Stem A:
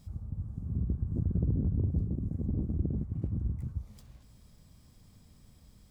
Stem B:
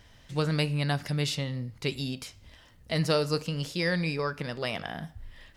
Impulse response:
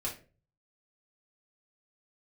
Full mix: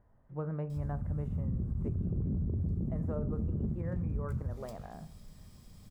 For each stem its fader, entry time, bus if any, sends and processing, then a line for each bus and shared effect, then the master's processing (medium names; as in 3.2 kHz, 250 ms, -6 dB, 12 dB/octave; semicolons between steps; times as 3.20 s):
+1.5 dB, 0.70 s, send -9.5 dB, none
-10.0 dB, 0.00 s, send -15.5 dB, low-pass 1.2 kHz 24 dB/octave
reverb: on, RT60 0.35 s, pre-delay 5 ms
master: peak limiter -26.5 dBFS, peak gain reduction 11.5 dB